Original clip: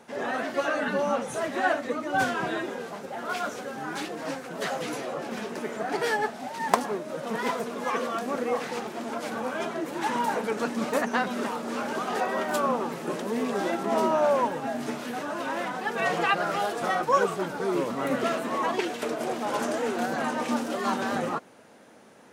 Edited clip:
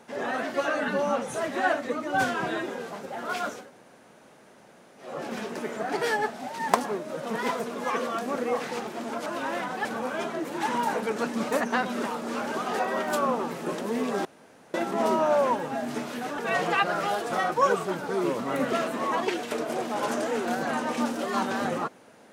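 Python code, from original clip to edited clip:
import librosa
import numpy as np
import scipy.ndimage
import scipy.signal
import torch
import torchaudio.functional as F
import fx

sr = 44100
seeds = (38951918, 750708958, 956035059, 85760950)

y = fx.edit(x, sr, fx.room_tone_fill(start_s=3.6, length_s=1.49, crossfade_s=0.24),
    fx.insert_room_tone(at_s=13.66, length_s=0.49),
    fx.move(start_s=15.3, length_s=0.59, to_s=9.26), tone=tone)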